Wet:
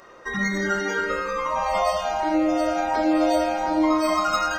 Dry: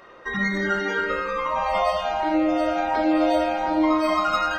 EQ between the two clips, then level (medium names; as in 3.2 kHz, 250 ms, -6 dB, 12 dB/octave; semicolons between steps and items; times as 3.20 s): resonant high shelf 4.6 kHz +7.5 dB, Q 1.5; band-stop 5.4 kHz, Q 30; 0.0 dB